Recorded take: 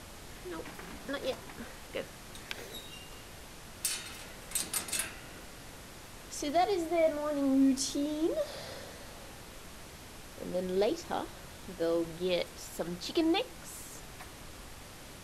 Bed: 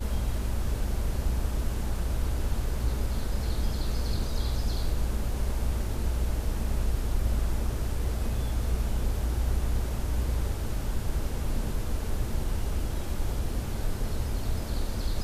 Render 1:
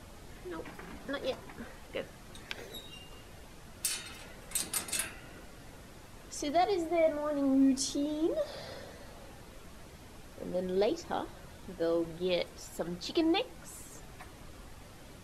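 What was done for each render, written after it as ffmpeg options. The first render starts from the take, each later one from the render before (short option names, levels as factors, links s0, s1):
-af "afftdn=nr=7:nf=-49"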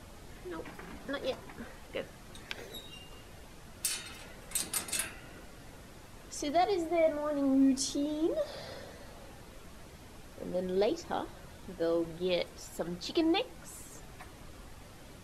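-af anull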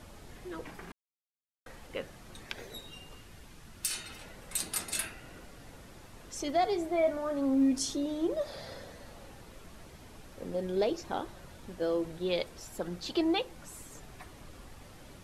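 -filter_complex "[0:a]asettb=1/sr,asplit=3[s0][s1][s2];[s0]atrim=end=3.154[s3];[s1]atrim=start=3.15:end=3.9,asetpts=PTS-STARTPTS,afade=t=in:d=0.004:c=qsin,afade=t=out:st=0.746:d=0.004:c=qsin,equalizer=f=600:w=1.1:g=-6[s4];[s2]atrim=start=3.896[s5];[s3][s4]acrossfade=d=0.004:c1=hsin:c2=qsin[s6];[s6][s5]acrossfade=d=0.004:c1=qsin:c2=hsin,asplit=3[s7][s8][s9];[s7]atrim=end=0.92,asetpts=PTS-STARTPTS,afade=t=out:st=0.916:d=0.004:c=hsin[s10];[s8]atrim=start=0.92:end=1.66,asetpts=PTS-STARTPTS,volume=0[s11];[s9]atrim=start=1.66,asetpts=PTS-STARTPTS,afade=t=in:d=0.004:c=hsin[s12];[s10][s11][s12]concat=n=3:v=0:a=1"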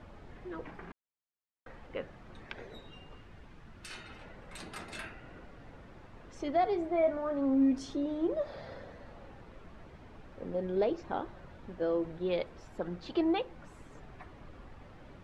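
-af "lowpass=1900,aemphasis=mode=production:type=cd"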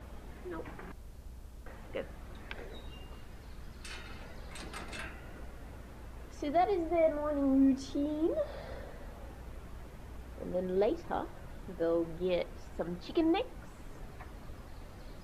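-filter_complex "[1:a]volume=0.0891[s0];[0:a][s0]amix=inputs=2:normalize=0"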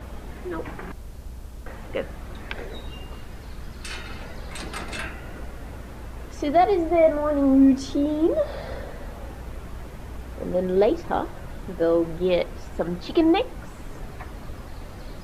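-af "volume=3.35"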